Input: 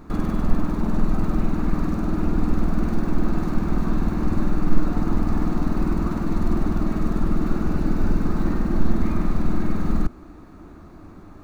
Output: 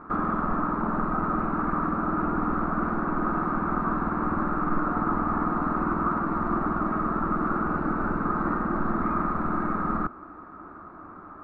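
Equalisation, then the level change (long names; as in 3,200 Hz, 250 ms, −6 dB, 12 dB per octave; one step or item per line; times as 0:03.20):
low-pass with resonance 1,300 Hz, resonance Q 4.3
low-shelf EQ 86 Hz −10.5 dB
low-shelf EQ 230 Hz −6.5 dB
0.0 dB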